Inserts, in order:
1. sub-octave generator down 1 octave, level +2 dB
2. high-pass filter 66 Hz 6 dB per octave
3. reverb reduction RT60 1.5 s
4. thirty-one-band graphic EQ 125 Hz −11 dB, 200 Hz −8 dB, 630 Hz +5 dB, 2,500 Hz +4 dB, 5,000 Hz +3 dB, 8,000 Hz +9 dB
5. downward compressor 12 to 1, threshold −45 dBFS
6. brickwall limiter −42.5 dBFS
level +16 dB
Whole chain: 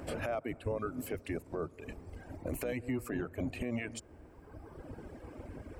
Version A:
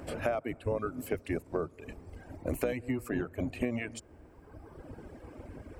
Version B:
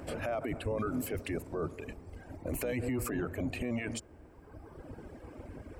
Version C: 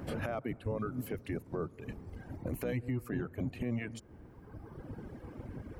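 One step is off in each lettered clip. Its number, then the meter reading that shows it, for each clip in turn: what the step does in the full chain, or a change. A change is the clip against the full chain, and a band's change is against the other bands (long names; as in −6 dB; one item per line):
6, change in crest factor +8.0 dB
5, average gain reduction 9.5 dB
4, 125 Hz band +6.0 dB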